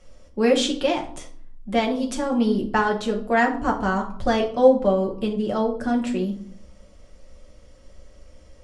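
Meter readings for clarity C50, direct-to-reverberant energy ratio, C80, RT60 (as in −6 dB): 10.5 dB, 0.0 dB, 15.0 dB, 0.55 s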